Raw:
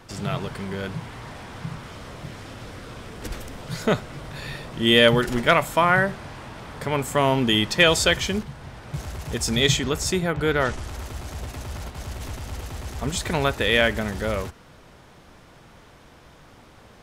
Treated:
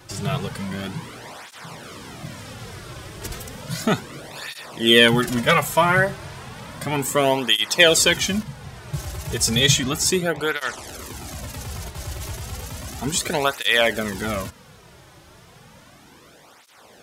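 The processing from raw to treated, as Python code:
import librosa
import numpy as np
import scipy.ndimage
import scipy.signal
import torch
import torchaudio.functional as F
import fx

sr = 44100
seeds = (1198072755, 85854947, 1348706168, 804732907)

y = fx.high_shelf(x, sr, hz=4700.0, db=9.0)
y = fx.quant_dither(y, sr, seeds[0], bits=12, dither='none', at=(0.81, 1.3))
y = fx.flanger_cancel(y, sr, hz=0.33, depth_ms=4.5)
y = y * 10.0 ** (3.5 / 20.0)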